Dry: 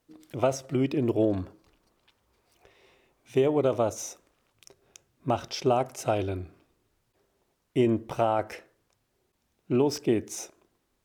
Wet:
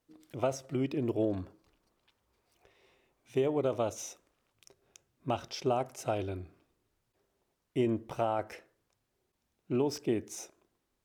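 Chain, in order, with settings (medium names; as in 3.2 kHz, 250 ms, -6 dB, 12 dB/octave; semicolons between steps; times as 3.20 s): 3.73–5.37 s: dynamic bell 3 kHz, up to +7 dB, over -53 dBFS, Q 1.7; trim -6 dB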